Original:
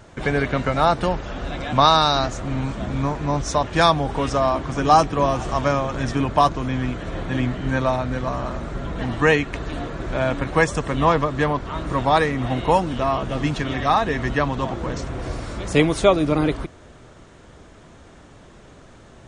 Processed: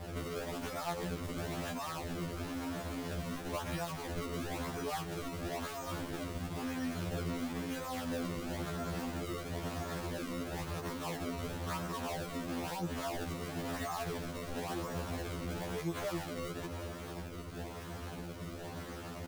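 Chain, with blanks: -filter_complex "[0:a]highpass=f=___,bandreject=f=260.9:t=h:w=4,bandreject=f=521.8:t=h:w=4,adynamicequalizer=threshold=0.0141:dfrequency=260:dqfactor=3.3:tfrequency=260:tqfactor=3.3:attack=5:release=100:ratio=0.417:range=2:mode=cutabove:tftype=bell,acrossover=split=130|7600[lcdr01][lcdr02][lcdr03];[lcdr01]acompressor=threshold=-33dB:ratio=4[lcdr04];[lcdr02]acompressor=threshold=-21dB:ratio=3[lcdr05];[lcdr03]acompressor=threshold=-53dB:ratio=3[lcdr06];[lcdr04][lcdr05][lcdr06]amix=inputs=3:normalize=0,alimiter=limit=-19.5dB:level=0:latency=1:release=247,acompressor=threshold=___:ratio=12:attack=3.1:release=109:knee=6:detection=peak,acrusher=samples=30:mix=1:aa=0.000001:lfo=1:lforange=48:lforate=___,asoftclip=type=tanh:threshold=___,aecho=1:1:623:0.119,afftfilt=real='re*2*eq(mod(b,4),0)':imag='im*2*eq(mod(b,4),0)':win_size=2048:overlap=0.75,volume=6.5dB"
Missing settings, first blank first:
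42, -36dB, 0.99, -35.5dB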